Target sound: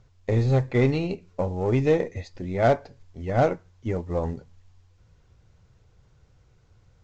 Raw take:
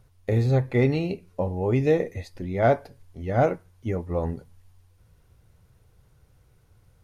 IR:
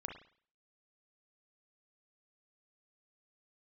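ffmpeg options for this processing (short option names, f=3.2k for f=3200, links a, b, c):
-af "aeval=exprs='0.376*(cos(1*acos(clip(val(0)/0.376,-1,1)))-cos(1*PI/2))+0.0119*(cos(6*acos(clip(val(0)/0.376,-1,1)))-cos(6*PI/2))+0.0188*(cos(8*acos(clip(val(0)/0.376,-1,1)))-cos(8*PI/2))':c=same" -ar 16000 -c:a pcm_mulaw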